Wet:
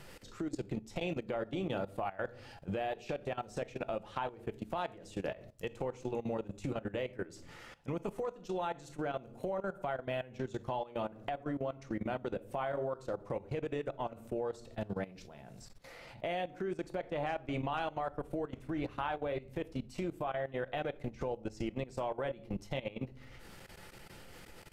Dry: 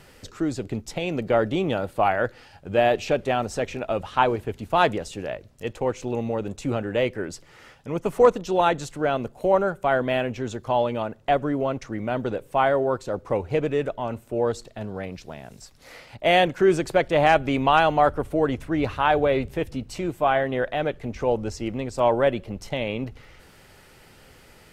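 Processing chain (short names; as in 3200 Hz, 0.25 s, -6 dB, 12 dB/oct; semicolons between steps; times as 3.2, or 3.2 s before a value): shoebox room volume 350 m³, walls furnished, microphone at 0.81 m; compressor 6:1, threshold -30 dBFS, peak gain reduction 18.5 dB; 15.41–17.72 high shelf 2500 Hz -4.5 dB; level quantiser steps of 17 dB; gain -1 dB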